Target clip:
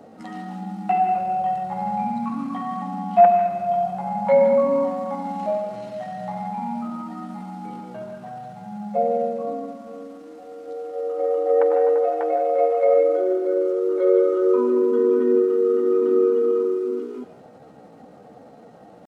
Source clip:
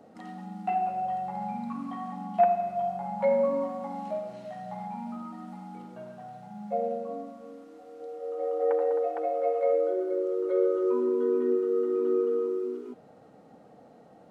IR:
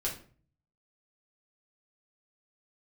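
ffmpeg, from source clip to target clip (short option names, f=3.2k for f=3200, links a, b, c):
-filter_complex "[0:a]atempo=0.75,asplit=2[a][b];[b]highpass=970[c];[1:a]atrim=start_sample=2205,adelay=148[d];[c][d]afir=irnorm=-1:irlink=0,volume=-11dB[e];[a][e]amix=inputs=2:normalize=0,volume=8dB"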